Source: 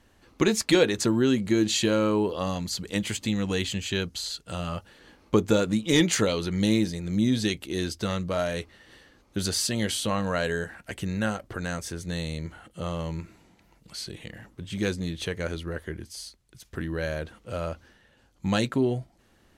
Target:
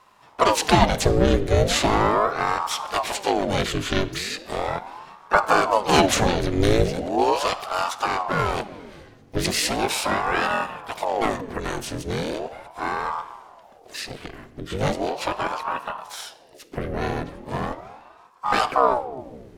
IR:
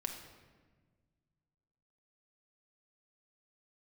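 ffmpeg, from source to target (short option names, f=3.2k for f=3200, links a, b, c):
-filter_complex "[0:a]asplit=3[a][b][c];[b]asetrate=22050,aresample=44100,atempo=2,volume=-1dB[d];[c]asetrate=66075,aresample=44100,atempo=0.66742,volume=-11dB[e];[a][d][e]amix=inputs=3:normalize=0,asplit=2[f][g];[1:a]atrim=start_sample=2205[h];[g][h]afir=irnorm=-1:irlink=0,volume=-5dB[i];[f][i]amix=inputs=2:normalize=0,aeval=exprs='val(0)*sin(2*PI*610*n/s+610*0.7/0.38*sin(2*PI*0.38*n/s))':c=same,volume=1dB"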